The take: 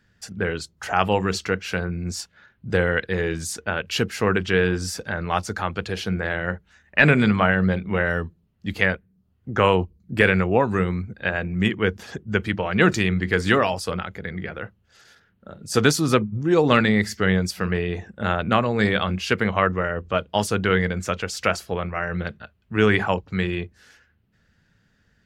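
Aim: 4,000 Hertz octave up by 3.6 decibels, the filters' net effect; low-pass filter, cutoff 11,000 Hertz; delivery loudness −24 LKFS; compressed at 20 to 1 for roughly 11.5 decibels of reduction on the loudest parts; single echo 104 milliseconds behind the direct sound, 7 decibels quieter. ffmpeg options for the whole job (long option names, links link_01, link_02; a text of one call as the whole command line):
ffmpeg -i in.wav -af "lowpass=11000,equalizer=frequency=4000:width_type=o:gain=5,acompressor=threshold=-22dB:ratio=20,aecho=1:1:104:0.447,volume=4dB" out.wav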